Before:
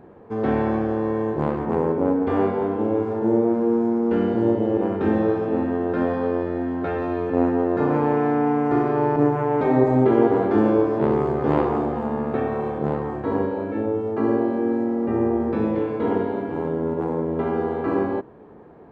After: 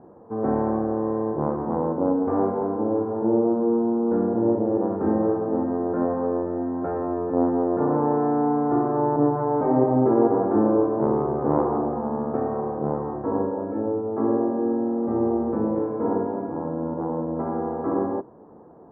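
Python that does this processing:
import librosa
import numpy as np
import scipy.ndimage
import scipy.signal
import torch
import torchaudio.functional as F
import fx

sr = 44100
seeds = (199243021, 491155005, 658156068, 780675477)

y = fx.lowpass(x, sr, hz=2200.0, slope=12, at=(3.46, 4.52))
y = scipy.signal.sosfilt(scipy.signal.butter(4, 1200.0, 'lowpass', fs=sr, output='sos'), y)
y = fx.low_shelf(y, sr, hz=110.0, db=-9.0)
y = fx.notch(y, sr, hz=410.0, q=12.0)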